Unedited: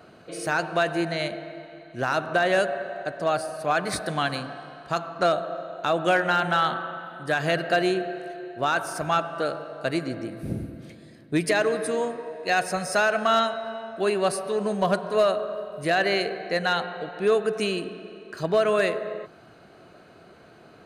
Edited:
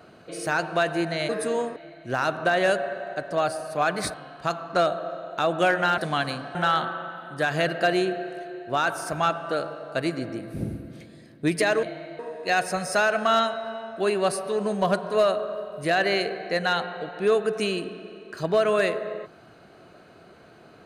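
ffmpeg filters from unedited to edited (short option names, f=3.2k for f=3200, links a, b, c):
-filter_complex "[0:a]asplit=8[a][b][c][d][e][f][g][h];[a]atrim=end=1.292[i];[b]atrim=start=11.718:end=12.192[j];[c]atrim=start=1.648:end=4.032[k];[d]atrim=start=4.598:end=6.442[l];[e]atrim=start=4.028:end=4.602[m];[f]atrim=start=6.438:end=11.722[n];[g]atrim=start=1.288:end=1.652[o];[h]atrim=start=12.188[p];[i][j]acrossfade=d=0.004:c1=hsin:c2=hsin[q];[q][k]acrossfade=d=0.004:c1=hsin:c2=hsin[r];[r][l]acrossfade=d=0.004:c1=hsin:c2=hsin[s];[s][m]acrossfade=d=0.004:c1=hsin:c2=hsin[t];[t][n]acrossfade=d=0.004:c1=hsin:c2=hsin[u];[u][o]acrossfade=d=0.004:c1=hsin:c2=hsin[v];[v][p]acrossfade=d=0.004:c1=hsin:c2=hsin"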